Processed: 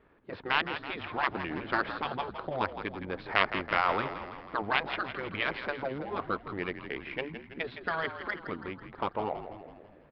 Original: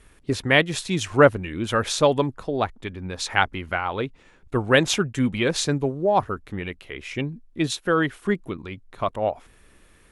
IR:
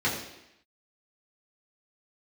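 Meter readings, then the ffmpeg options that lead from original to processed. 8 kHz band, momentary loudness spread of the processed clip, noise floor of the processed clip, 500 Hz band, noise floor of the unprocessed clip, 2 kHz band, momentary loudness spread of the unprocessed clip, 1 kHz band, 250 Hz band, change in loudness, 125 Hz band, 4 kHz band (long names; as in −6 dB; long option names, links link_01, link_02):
below −40 dB, 11 LU, −55 dBFS, −13.0 dB, −55 dBFS, −6.5 dB, 14 LU, −5.5 dB, −13.5 dB, −9.5 dB, −16.5 dB, −10.0 dB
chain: -filter_complex "[0:a]afftfilt=real='re*lt(hypot(re,im),0.282)':imag='im*lt(hypot(re,im),0.282)':win_size=1024:overlap=0.75,acrossover=split=2600[link_01][link_02];[link_02]acompressor=threshold=-35dB:ratio=4:attack=1:release=60[link_03];[link_01][link_03]amix=inputs=2:normalize=0,highpass=frequency=610:poles=1,adynamicsmooth=sensitivity=1.5:basefreq=980,asplit=8[link_04][link_05][link_06][link_07][link_08][link_09][link_10][link_11];[link_05]adelay=164,afreqshift=-56,volume=-10dB[link_12];[link_06]adelay=328,afreqshift=-112,volume=-14.7dB[link_13];[link_07]adelay=492,afreqshift=-168,volume=-19.5dB[link_14];[link_08]adelay=656,afreqshift=-224,volume=-24.2dB[link_15];[link_09]adelay=820,afreqshift=-280,volume=-28.9dB[link_16];[link_10]adelay=984,afreqshift=-336,volume=-33.7dB[link_17];[link_11]adelay=1148,afreqshift=-392,volume=-38.4dB[link_18];[link_04][link_12][link_13][link_14][link_15][link_16][link_17][link_18]amix=inputs=8:normalize=0,aresample=11025,aresample=44100,volume=4.5dB"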